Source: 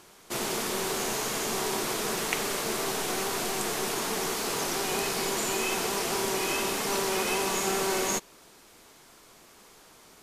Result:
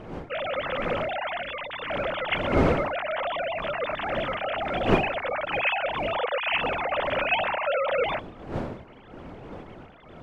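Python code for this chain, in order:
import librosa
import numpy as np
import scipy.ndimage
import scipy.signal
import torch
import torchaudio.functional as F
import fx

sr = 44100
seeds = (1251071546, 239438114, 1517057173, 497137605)

y = fx.sine_speech(x, sr)
y = fx.dmg_wind(y, sr, seeds[0], corner_hz=500.0, level_db=-35.0)
y = fx.peak_eq(y, sr, hz=700.0, db=-14.0, octaves=0.86, at=(1.42, 1.9))
y = y * 10.0 ** (1.5 / 20.0)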